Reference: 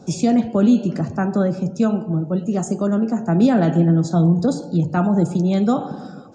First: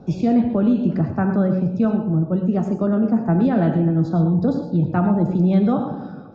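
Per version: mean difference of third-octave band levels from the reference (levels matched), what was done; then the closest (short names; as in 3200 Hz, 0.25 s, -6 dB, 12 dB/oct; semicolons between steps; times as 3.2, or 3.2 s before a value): 3.0 dB: low shelf 68 Hz +11.5 dB; limiter -10 dBFS, peak gain reduction 5.5 dB; air absorption 290 m; non-linear reverb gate 0.14 s rising, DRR 7 dB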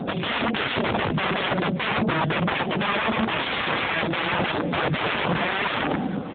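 13.5 dB: upward compressor, threshold -30 dBFS; wrapped overs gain 22.5 dB; on a send: echo 0.915 s -18.5 dB; on the sum: gain +8 dB; AMR-NB 7.4 kbps 8000 Hz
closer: first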